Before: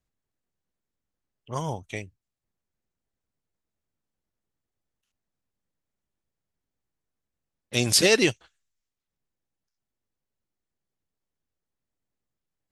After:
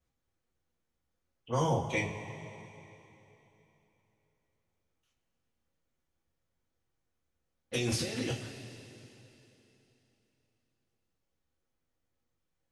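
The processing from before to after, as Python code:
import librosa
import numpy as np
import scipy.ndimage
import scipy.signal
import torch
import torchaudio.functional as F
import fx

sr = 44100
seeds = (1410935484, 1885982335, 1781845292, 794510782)

y = fx.high_shelf(x, sr, hz=7400.0, db=-8.0)
y = fx.over_compress(y, sr, threshold_db=-30.0, ratio=-1.0)
y = fx.rev_double_slope(y, sr, seeds[0], early_s=0.25, late_s=3.3, knee_db=-18, drr_db=-6.0)
y = y * librosa.db_to_amplitude(-8.0)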